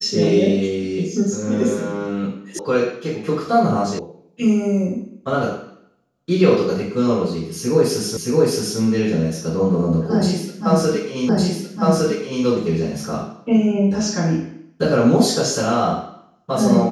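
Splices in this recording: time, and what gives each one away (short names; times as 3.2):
2.59 sound cut off
3.99 sound cut off
8.17 repeat of the last 0.62 s
11.29 repeat of the last 1.16 s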